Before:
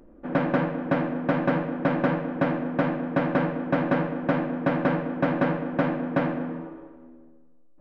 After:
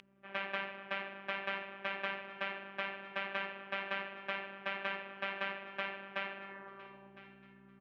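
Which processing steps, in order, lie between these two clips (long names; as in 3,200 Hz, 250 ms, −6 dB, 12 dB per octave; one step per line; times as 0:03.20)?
mains hum 60 Hz, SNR 11 dB
in parallel at −8 dB: hard clipping −18 dBFS, distortion −16 dB
on the sum: phases set to zero 196 Hz
band-pass filter sweep 2,800 Hz → 930 Hz, 0:06.36–0:07.00
repeating echo 1,008 ms, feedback 37%, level −18 dB
level +2.5 dB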